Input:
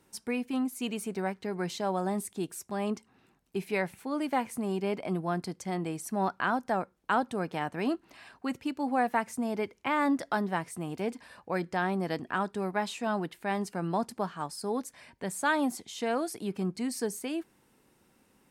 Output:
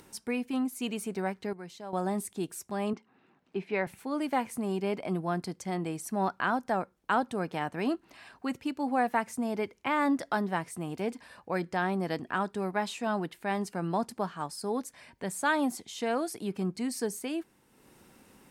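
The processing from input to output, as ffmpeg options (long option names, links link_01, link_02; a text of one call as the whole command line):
ffmpeg -i in.wav -filter_complex "[0:a]asettb=1/sr,asplit=3[link_01][link_02][link_03];[link_01]atrim=end=2.934[link_04];[link_02]atrim=start=2.93:end=3.87,asetpts=PTS-STARTPTS,afade=type=in:duration=0.004:curve=qsin,afade=type=out:start_time=0.936:duration=0.004:curve=qsin,highpass=170,lowpass=3000[link_05];[link_03]atrim=start=3.866[link_06];[link_04][link_05]acrossfade=duration=0.004:curve1=hsin:curve2=qsin[link_07];[link_07][link_06]acrossfade=duration=0.004:curve1=qsin:curve2=hsin,asplit=3[link_08][link_09][link_10];[link_08]atrim=end=1.532[link_11];[link_09]atrim=start=1.528:end=1.932,asetpts=PTS-STARTPTS,volume=-11dB[link_12];[link_10]atrim=start=1.928[link_13];[link_11][link_12]acrossfade=duration=0.004:curve1=hsin:curve2=hsin[link_14];[link_14][link_13]acrossfade=duration=0.004:curve1=hsin:curve2=hsin,acompressor=mode=upward:threshold=-48dB:ratio=2.5" out.wav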